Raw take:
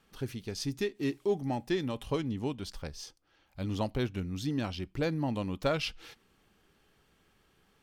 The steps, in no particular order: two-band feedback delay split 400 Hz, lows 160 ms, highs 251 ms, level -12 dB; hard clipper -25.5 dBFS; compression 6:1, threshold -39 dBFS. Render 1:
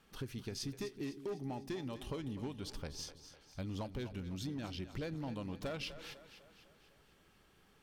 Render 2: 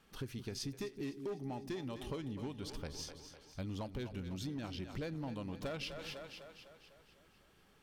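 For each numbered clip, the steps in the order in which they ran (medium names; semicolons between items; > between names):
hard clipper > compression > two-band feedback delay; hard clipper > two-band feedback delay > compression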